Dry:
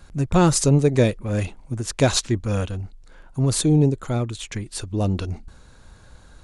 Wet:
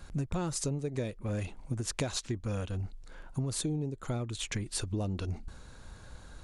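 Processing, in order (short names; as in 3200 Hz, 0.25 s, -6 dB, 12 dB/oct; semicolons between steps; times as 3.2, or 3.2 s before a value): compressor 16:1, threshold -28 dBFS, peak gain reduction 17.5 dB; gain -1.5 dB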